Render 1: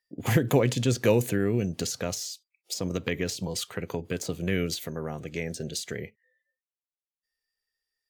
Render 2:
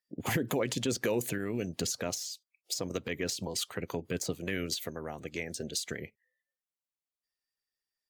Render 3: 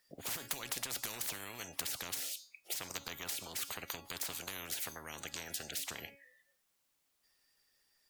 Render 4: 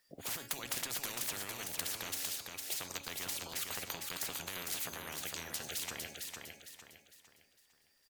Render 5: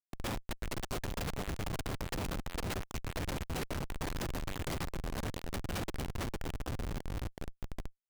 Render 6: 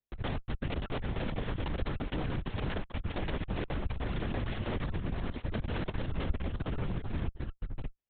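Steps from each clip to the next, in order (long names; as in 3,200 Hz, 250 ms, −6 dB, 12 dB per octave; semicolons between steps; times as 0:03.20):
harmonic and percussive parts rebalanced harmonic −13 dB; brickwall limiter −20 dBFS, peak gain reduction 9.5 dB
tuned comb filter 280 Hz, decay 0.31 s, harmonics all, mix 50%; every bin compressed towards the loudest bin 10 to 1; level +7 dB
repeating echo 455 ms, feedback 37%, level −4.5 dB
echo whose low-pass opens from repeat to repeat 374 ms, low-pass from 400 Hz, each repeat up 1 octave, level −3 dB; downward compressor 8 to 1, threshold −48 dBFS, peak gain reduction 16 dB; comparator with hysteresis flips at −44.5 dBFS; level +17 dB
in parallel at −5 dB: decimation without filtering 33×; on the sum: linear-prediction vocoder at 8 kHz whisper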